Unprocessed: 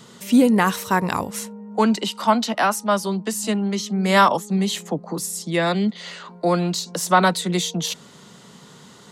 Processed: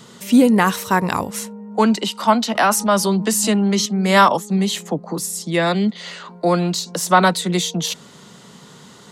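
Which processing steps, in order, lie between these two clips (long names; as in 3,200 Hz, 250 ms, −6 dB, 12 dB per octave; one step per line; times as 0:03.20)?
0:02.55–0:03.86: envelope flattener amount 50%
level +2.5 dB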